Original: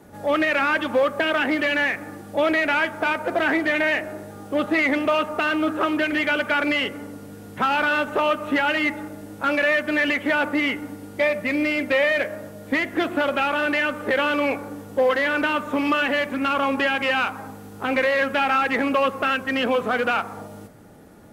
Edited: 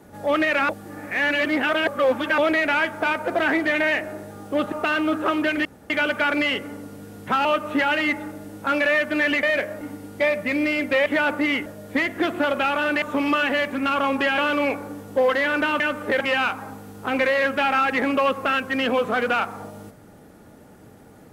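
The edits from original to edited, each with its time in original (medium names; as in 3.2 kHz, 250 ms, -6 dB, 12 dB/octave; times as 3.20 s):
0.69–2.38 s: reverse
4.72–5.27 s: delete
6.20 s: insert room tone 0.25 s
7.75–8.22 s: delete
10.20–10.80 s: swap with 12.05–12.43 s
13.79–14.19 s: swap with 15.61–16.97 s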